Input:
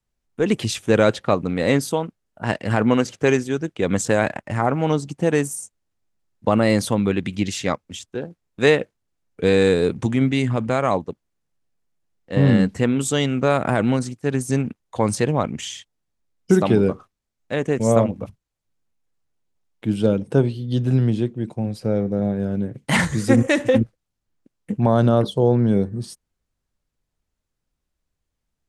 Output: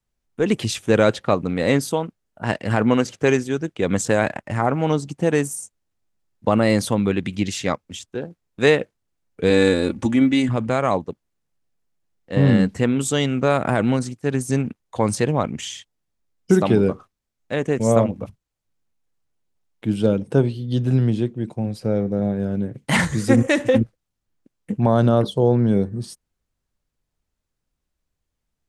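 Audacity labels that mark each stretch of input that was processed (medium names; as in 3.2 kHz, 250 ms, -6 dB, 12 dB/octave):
9.500000	10.490000	comb 3.5 ms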